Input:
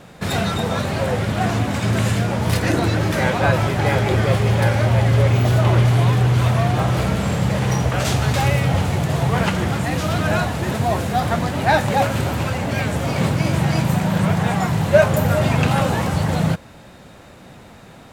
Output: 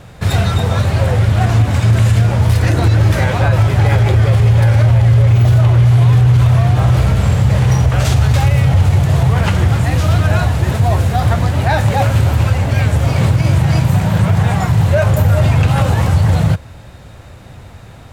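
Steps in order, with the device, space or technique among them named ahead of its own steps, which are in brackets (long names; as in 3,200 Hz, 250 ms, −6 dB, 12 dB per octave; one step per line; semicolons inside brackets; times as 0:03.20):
car stereo with a boomy subwoofer (low shelf with overshoot 140 Hz +9.5 dB, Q 1.5; brickwall limiter −6 dBFS, peak gain reduction 8 dB)
level +2.5 dB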